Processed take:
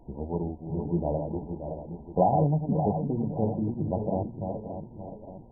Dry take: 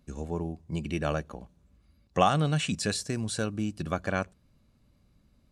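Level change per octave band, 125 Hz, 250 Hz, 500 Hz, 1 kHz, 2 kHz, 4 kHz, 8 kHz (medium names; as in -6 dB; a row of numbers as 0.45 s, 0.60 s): +3.0 dB, +3.5 dB, +3.5 dB, +1.5 dB, under -40 dB, under -40 dB, under -40 dB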